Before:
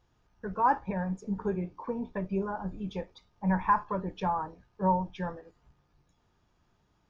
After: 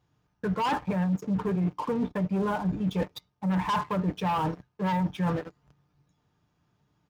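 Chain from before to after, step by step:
leveller curve on the samples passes 3
high-shelf EQ 4,600 Hz +6.5 dB
comb filter 6.7 ms, depth 31%
in parallel at −4 dB: hard clipping −22.5 dBFS, distortion −9 dB
on the sum: high-pass filter 92 Hz 12 dB per octave
bass and treble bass +7 dB, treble −5 dB
reversed playback
downward compressor, threshold −24 dBFS, peak gain reduction 13.5 dB
reversed playback
level −1.5 dB

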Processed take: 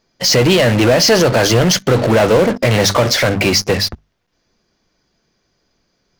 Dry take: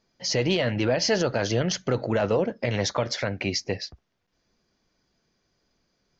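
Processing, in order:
mains-hum notches 50/100/150/200/250 Hz
in parallel at −10.5 dB: fuzz pedal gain 41 dB, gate −45 dBFS
on the sum: level +7.5 dB

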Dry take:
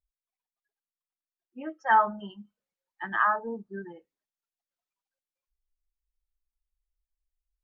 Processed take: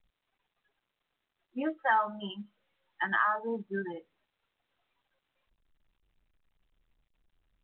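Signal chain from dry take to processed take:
0:01.77–0:03.94: spectral tilt +1.5 dB per octave
downward compressor 3 to 1, threshold −35 dBFS, peak gain reduction 14 dB
level +7 dB
mu-law 64 kbit/s 8,000 Hz

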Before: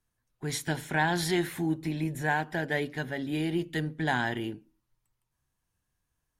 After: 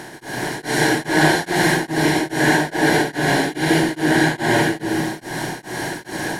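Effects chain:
compressor on every frequency bin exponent 0.2
convolution reverb RT60 1.6 s, pre-delay 120 ms, DRR −10 dB
tremolo along a rectified sine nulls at 2.4 Hz
level −4 dB

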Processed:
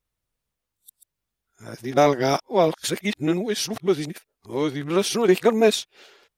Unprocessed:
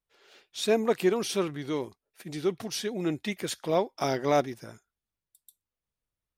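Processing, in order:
played backwards from end to start
level +7 dB

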